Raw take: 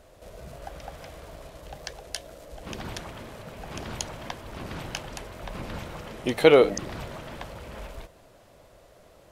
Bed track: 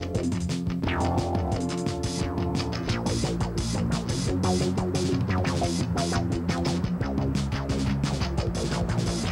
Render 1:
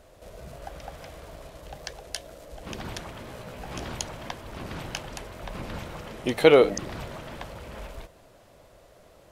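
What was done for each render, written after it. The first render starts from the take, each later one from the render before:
0:03.25–0:03.92: double-tracking delay 16 ms −5 dB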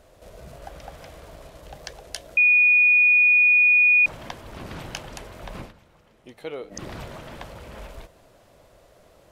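0:02.37–0:04.06: beep over 2,460 Hz −13 dBFS
0:05.60–0:06.83: duck −18.5 dB, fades 0.13 s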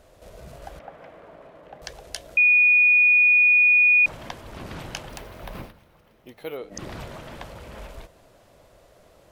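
0:00.79–0:01.82: three-way crossover with the lows and the highs turned down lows −19 dB, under 160 Hz, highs −21 dB, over 2,500 Hz
0:05.09–0:06.57: bad sample-rate conversion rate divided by 3×, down filtered, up hold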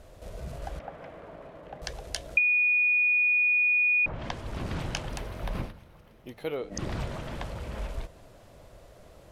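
treble cut that deepens with the level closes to 1,700 Hz, closed at −18 dBFS
low-shelf EQ 180 Hz +7.5 dB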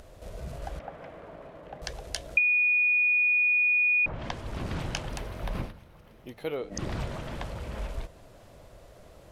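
upward compression, threshold −48 dBFS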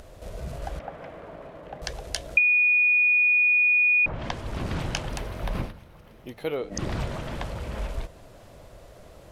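level +3.5 dB

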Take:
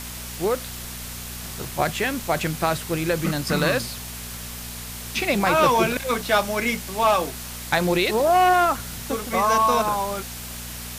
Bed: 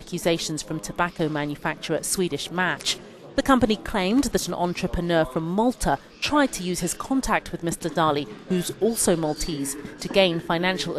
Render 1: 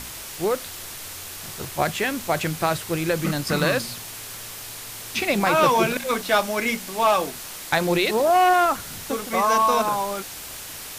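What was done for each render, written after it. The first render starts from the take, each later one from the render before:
hum removal 60 Hz, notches 4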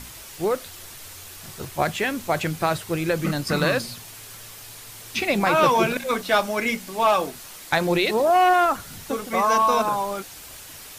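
broadband denoise 6 dB, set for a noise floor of −37 dBFS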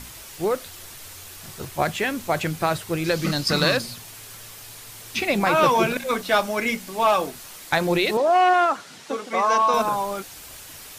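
0:03.04–0:03.77: parametric band 4,600 Hz +9.5 dB 0.98 octaves
0:08.17–0:09.74: band-pass filter 270–6,600 Hz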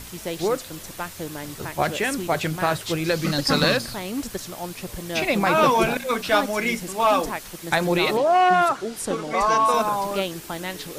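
mix in bed −8.5 dB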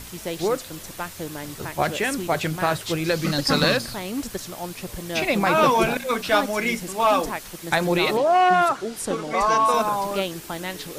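no processing that can be heard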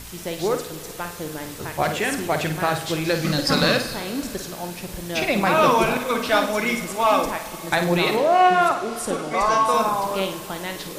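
on a send: flutter between parallel walls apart 8.9 metres, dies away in 0.38 s
on the sum: four-comb reverb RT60 3.5 s, combs from 25 ms, DRR 13 dB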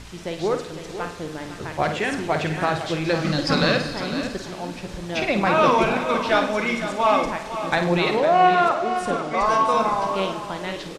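high-frequency loss of the air 88 metres
single-tap delay 505 ms −10.5 dB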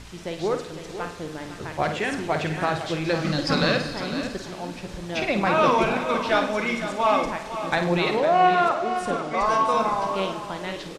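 level −2 dB

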